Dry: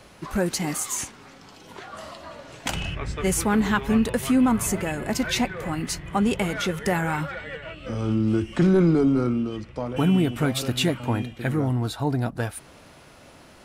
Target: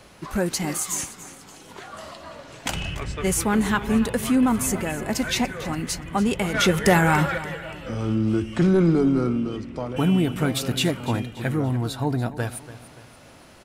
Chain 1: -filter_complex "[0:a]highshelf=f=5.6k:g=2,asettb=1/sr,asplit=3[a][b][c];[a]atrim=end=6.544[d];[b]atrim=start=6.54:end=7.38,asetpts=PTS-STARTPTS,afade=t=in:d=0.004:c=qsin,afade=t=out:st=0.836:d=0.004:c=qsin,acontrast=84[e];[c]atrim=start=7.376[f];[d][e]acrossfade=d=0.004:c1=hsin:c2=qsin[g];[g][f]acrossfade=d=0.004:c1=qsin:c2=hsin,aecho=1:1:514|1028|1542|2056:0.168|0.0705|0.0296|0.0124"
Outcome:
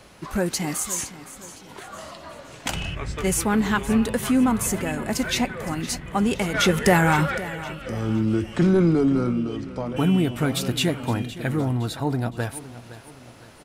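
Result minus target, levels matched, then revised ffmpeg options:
echo 0.226 s late
-filter_complex "[0:a]highshelf=f=5.6k:g=2,asettb=1/sr,asplit=3[a][b][c];[a]atrim=end=6.544[d];[b]atrim=start=6.54:end=7.38,asetpts=PTS-STARTPTS,afade=t=in:d=0.004:c=qsin,afade=t=out:st=0.836:d=0.004:c=qsin,acontrast=84[e];[c]atrim=start=7.376[f];[d][e]acrossfade=d=0.004:c1=hsin:c2=qsin[g];[g][f]acrossfade=d=0.004:c1=qsin:c2=hsin,aecho=1:1:288|576|864|1152:0.168|0.0705|0.0296|0.0124"

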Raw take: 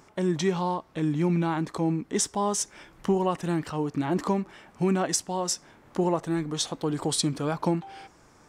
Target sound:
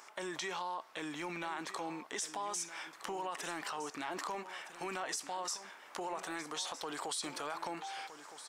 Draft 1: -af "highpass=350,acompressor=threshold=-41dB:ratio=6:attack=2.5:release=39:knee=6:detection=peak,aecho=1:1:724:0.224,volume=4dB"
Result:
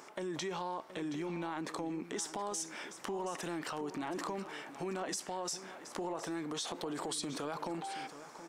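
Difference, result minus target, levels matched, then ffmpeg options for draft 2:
echo 0.54 s early; 250 Hz band +5.5 dB
-af "highpass=840,acompressor=threshold=-41dB:ratio=6:attack=2.5:release=39:knee=6:detection=peak,aecho=1:1:1264:0.224,volume=4dB"

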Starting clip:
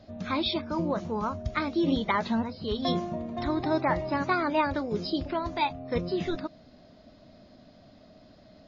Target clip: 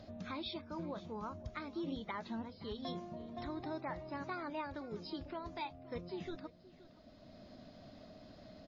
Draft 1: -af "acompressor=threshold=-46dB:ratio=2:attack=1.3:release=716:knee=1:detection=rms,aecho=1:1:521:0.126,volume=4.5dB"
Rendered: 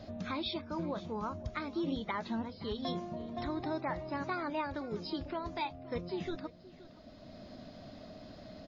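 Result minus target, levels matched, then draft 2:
compressor: peak gain reduction -6 dB
-af "acompressor=threshold=-57.5dB:ratio=2:attack=1.3:release=716:knee=1:detection=rms,aecho=1:1:521:0.126,volume=4.5dB"

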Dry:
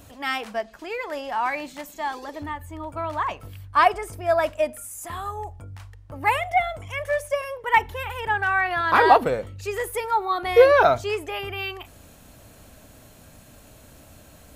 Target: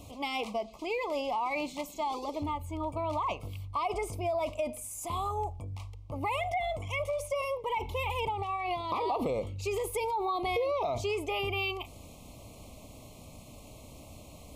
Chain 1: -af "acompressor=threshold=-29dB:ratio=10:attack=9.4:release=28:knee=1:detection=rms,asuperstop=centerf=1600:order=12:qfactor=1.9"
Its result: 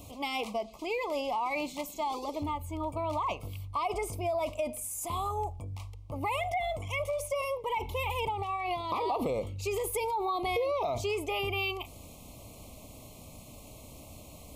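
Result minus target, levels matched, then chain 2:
8000 Hz band +3.0 dB
-af "acompressor=threshold=-29dB:ratio=10:attack=9.4:release=28:knee=1:detection=rms,asuperstop=centerf=1600:order=12:qfactor=1.9,highshelf=f=11k:g=-9"

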